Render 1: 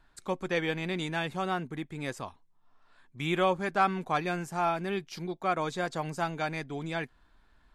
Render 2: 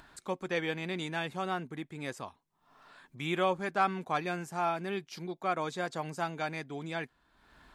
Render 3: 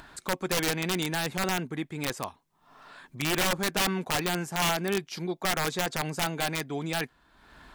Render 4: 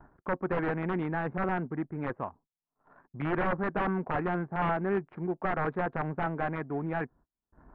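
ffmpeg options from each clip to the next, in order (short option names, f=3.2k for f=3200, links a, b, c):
-af "highpass=f=120:p=1,acompressor=mode=upward:threshold=-43dB:ratio=2.5,volume=-2.5dB"
-filter_complex "[0:a]asplit=2[a][b];[b]alimiter=level_in=1dB:limit=-24dB:level=0:latency=1:release=11,volume=-1dB,volume=2dB[c];[a][c]amix=inputs=2:normalize=0,aeval=exprs='(mod(9.44*val(0)+1,2)-1)/9.44':c=same"
-af "adynamicsmooth=sensitivity=6.5:basefreq=610,lowpass=f=1.7k:w=0.5412,lowpass=f=1.7k:w=1.3066,agate=range=-33dB:threshold=-55dB:ratio=16:detection=peak"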